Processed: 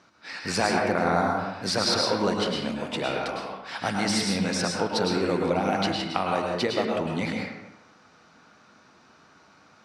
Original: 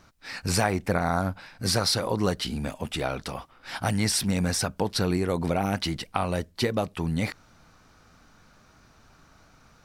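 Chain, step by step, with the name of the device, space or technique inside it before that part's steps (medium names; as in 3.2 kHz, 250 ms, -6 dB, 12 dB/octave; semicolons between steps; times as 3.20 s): supermarket ceiling speaker (band-pass 200–6200 Hz; reverberation RT60 1.0 s, pre-delay 100 ms, DRR -0.5 dB)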